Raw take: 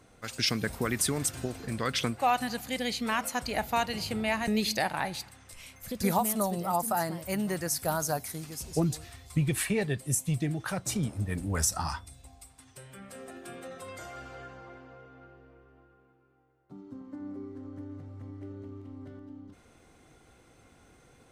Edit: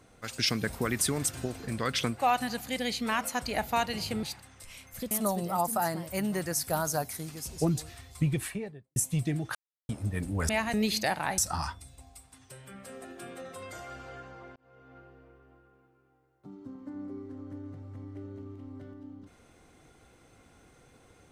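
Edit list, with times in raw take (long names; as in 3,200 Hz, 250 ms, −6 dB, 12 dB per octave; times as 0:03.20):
0:04.23–0:05.12: move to 0:11.64
0:06.00–0:06.26: remove
0:09.31–0:10.11: fade out and dull
0:10.70–0:11.04: silence
0:14.82–0:15.22: fade in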